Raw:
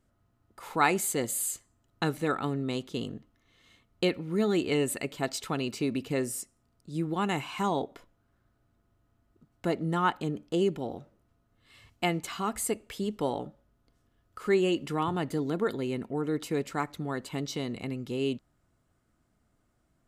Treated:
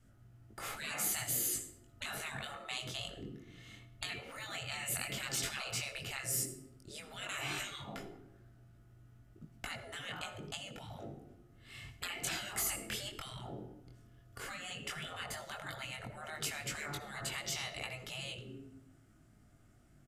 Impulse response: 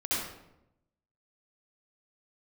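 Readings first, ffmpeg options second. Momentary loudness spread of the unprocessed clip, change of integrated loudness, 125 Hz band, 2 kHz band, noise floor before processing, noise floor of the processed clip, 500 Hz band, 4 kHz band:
10 LU, -8.5 dB, -11.5 dB, -4.0 dB, -72 dBFS, -63 dBFS, -18.5 dB, -1.0 dB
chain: -filter_complex "[0:a]adynamicequalizer=threshold=0.00562:dfrequency=360:dqfactor=5.2:tfrequency=360:tqfactor=5.2:attack=5:release=100:ratio=0.375:range=3.5:mode=boostabove:tftype=bell,flanger=delay=18.5:depth=5.5:speed=0.11,acompressor=threshold=0.0282:ratio=6,asplit=2[s0][s1];[1:a]atrim=start_sample=2205[s2];[s1][s2]afir=irnorm=-1:irlink=0,volume=0.1[s3];[s0][s3]amix=inputs=2:normalize=0,afftfilt=real='re*lt(hypot(re,im),0.02)':imag='im*lt(hypot(re,im),0.02)':win_size=1024:overlap=0.75,aresample=32000,aresample=44100,equalizer=f=125:t=o:w=0.33:g=9,equalizer=f=500:t=o:w=0.33:g=-6,equalizer=f=1000:t=o:w=0.33:g=-10,equalizer=f=4000:t=o:w=0.33:g=-4,volume=2.82"

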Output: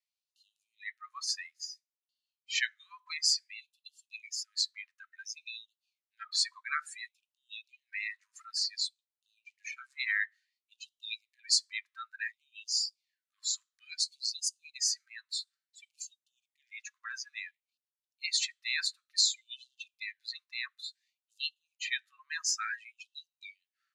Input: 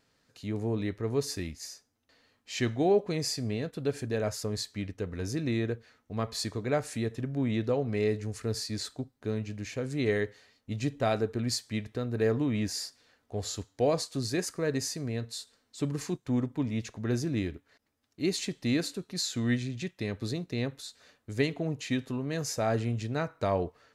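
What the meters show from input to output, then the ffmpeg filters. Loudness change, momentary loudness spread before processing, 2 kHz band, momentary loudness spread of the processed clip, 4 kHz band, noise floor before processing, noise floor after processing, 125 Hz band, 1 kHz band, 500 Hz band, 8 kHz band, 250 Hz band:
-2.0 dB, 9 LU, +3.5 dB, 19 LU, +5.5 dB, -74 dBFS, under -85 dBFS, under -40 dB, -9.5 dB, under -40 dB, +4.0 dB, under -40 dB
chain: -af "afftdn=nr=27:nf=-38,afftfilt=real='re*gte(b*sr/1024,970*pow(2700/970,0.5+0.5*sin(2*PI*0.57*pts/sr)))':imag='im*gte(b*sr/1024,970*pow(2700/970,0.5+0.5*sin(2*PI*0.57*pts/sr)))':win_size=1024:overlap=0.75,volume=2.37"

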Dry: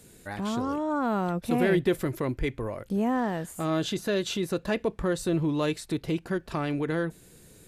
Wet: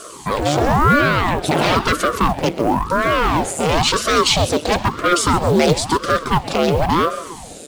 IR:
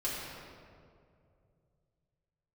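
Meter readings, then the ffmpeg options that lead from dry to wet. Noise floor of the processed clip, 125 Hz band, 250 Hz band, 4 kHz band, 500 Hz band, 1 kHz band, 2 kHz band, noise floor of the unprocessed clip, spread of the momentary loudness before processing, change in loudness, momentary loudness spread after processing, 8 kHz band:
-36 dBFS, +11.0 dB, +7.0 dB, +17.5 dB, +10.5 dB, +17.0 dB, +15.0 dB, -54 dBFS, 6 LU, +12.0 dB, 5 LU, +17.5 dB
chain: -filter_complex "[0:a]equalizer=f=2100:t=o:w=0.78:g=-4,aeval=exprs='0.266*sin(PI/2*5.01*val(0)/0.266)':c=same,highpass=f=240:w=0.5412,highpass=f=240:w=1.3066,equalizer=f=580:t=q:w=4:g=4,equalizer=f=1100:t=q:w=4:g=-9,equalizer=f=1700:t=q:w=4:g=-9,lowpass=f=9200:w=0.5412,lowpass=f=9200:w=1.3066,flanger=delay=0.2:depth=2:regen=58:speed=0.7:shape=triangular,asoftclip=type=tanh:threshold=0.266,acrusher=bits=7:mode=log:mix=0:aa=0.000001,aecho=1:1:129|258|387|516|645|774:0.158|0.0919|0.0533|0.0309|0.0179|0.0104,asplit=2[s0][s1];[1:a]atrim=start_sample=2205,afade=t=out:st=0.44:d=0.01,atrim=end_sample=19845[s2];[s1][s2]afir=irnorm=-1:irlink=0,volume=0.0944[s3];[s0][s3]amix=inputs=2:normalize=0,aeval=exprs='val(0)*sin(2*PI*480*n/s+480*0.85/0.98*sin(2*PI*0.98*n/s))':c=same,volume=2.82"

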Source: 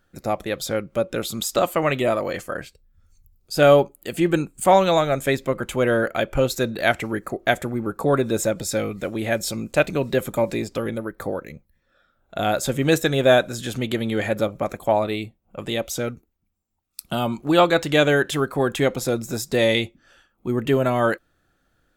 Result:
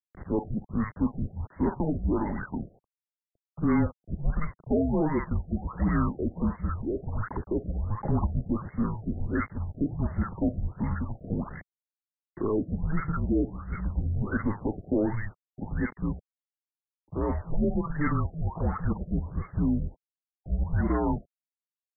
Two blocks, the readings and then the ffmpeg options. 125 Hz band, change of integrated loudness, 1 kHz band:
-1.5 dB, -8.5 dB, -12.5 dB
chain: -filter_complex "[0:a]adynamicequalizer=threshold=0.0224:dfrequency=500:dqfactor=2:tfrequency=500:tqfactor=2:attack=5:release=100:ratio=0.375:range=3.5:mode=cutabove:tftype=bell,alimiter=limit=0.251:level=0:latency=1:release=19,asoftclip=type=tanh:threshold=0.15,acrossover=split=180|1200[s0][s1][s2];[s1]adelay=40[s3];[s2]adelay=90[s4];[s0][s3][s4]amix=inputs=3:normalize=0,acrusher=bits=6:mix=0:aa=0.000001,highpass=f=150:t=q:w=0.5412,highpass=f=150:t=q:w=1.307,lowpass=f=3200:t=q:w=0.5176,lowpass=f=3200:t=q:w=0.7071,lowpass=f=3200:t=q:w=1.932,afreqshift=-310,afftfilt=real='re*lt(b*sr/1024,710*pow(2200/710,0.5+0.5*sin(2*PI*1.4*pts/sr)))':imag='im*lt(b*sr/1024,710*pow(2200/710,0.5+0.5*sin(2*PI*1.4*pts/sr)))':win_size=1024:overlap=0.75"

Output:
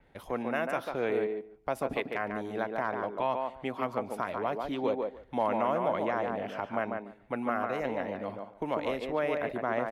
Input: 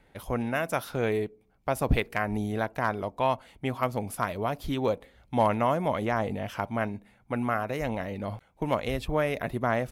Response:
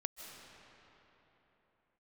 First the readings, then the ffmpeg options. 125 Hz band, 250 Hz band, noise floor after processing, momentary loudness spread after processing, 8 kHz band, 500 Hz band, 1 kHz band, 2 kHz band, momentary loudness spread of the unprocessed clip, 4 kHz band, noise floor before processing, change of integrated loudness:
-13.0 dB, -4.5 dB, -56 dBFS, 7 LU, under -10 dB, -1.5 dB, -2.5 dB, -3.5 dB, 8 LU, -5.5 dB, -63 dBFS, -3.0 dB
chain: -filter_complex "[0:a]aemphasis=mode=reproduction:type=cd,alimiter=limit=0.141:level=0:latency=1:release=53,acrossover=split=220[s0][s1];[s0]acompressor=threshold=0.00355:ratio=10[s2];[s1]asplit=2[s3][s4];[s4]adelay=145,lowpass=f=1700:p=1,volume=0.708,asplit=2[s5][s6];[s6]adelay=145,lowpass=f=1700:p=1,volume=0.16,asplit=2[s7][s8];[s8]adelay=145,lowpass=f=1700:p=1,volume=0.16[s9];[s3][s5][s7][s9]amix=inputs=4:normalize=0[s10];[s2][s10]amix=inputs=2:normalize=0,adynamicequalizer=threshold=0.00316:dfrequency=4900:dqfactor=0.7:tfrequency=4900:tqfactor=0.7:attack=5:release=100:ratio=0.375:range=3:mode=cutabove:tftype=highshelf,volume=0.794"

